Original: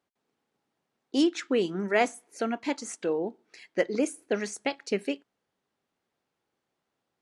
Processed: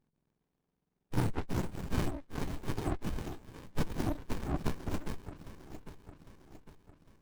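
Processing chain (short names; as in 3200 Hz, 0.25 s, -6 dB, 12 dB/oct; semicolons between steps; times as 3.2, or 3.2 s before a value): spectrum mirrored in octaves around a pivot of 1700 Hz; reverb removal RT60 1.2 s; on a send: echo with dull and thin repeats by turns 0.402 s, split 2000 Hz, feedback 69%, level -10 dB; on the sum: running maximum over 65 samples; gain +4.5 dB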